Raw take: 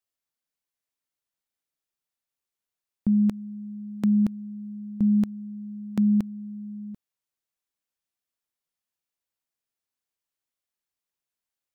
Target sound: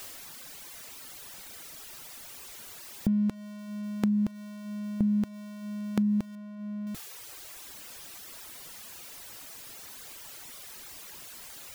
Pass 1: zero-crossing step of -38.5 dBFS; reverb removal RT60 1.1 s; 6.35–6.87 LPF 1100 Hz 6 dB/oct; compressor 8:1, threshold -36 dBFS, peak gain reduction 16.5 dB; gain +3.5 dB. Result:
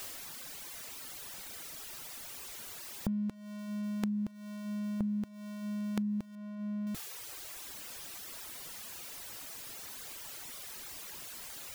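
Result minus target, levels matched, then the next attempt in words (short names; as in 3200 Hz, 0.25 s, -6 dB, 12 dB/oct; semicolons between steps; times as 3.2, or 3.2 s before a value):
compressor: peak gain reduction +8 dB
zero-crossing step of -38.5 dBFS; reverb removal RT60 1.1 s; 6.35–6.87 LPF 1100 Hz 6 dB/oct; compressor 8:1, threshold -27 dBFS, peak gain reduction 9 dB; gain +3.5 dB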